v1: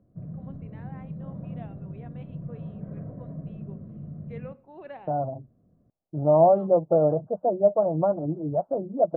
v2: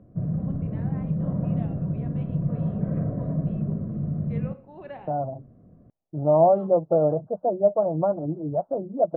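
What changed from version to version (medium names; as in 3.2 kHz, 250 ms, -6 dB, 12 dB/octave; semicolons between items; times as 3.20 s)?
first voice: send +9.0 dB; background +11.0 dB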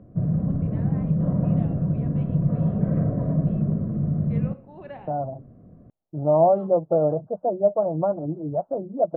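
background +4.0 dB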